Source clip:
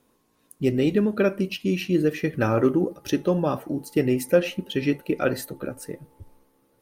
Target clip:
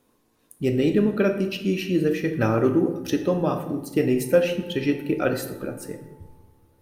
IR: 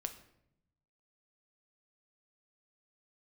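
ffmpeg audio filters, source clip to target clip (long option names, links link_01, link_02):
-filter_complex "[1:a]atrim=start_sample=2205,asetrate=31311,aresample=44100[link_01];[0:a][link_01]afir=irnorm=-1:irlink=0"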